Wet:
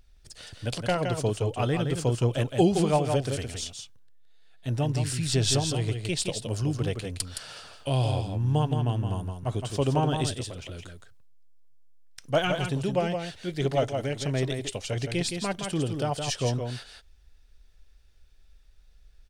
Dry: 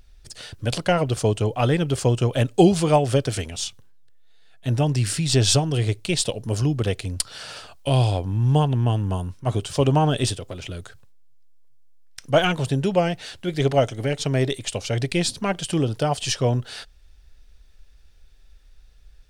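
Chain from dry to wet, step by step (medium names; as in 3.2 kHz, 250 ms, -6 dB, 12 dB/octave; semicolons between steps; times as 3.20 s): delay 167 ms -6 dB; trim -6.5 dB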